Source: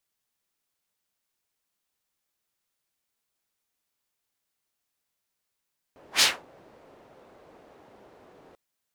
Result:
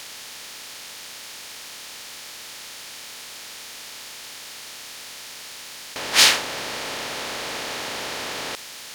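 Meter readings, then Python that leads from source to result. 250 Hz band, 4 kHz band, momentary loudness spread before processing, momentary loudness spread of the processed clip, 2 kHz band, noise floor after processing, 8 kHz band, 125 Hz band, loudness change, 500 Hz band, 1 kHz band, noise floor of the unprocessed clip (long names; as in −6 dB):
+13.0 dB, +9.0 dB, 12 LU, 15 LU, +9.5 dB, −39 dBFS, +9.5 dB, +13.0 dB, −2.0 dB, +13.5 dB, +11.5 dB, −82 dBFS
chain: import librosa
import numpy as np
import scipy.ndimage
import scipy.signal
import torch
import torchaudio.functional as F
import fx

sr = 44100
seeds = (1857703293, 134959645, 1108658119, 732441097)

y = fx.bin_compress(x, sr, power=0.4)
y = y * 10.0 ** (5.5 / 20.0)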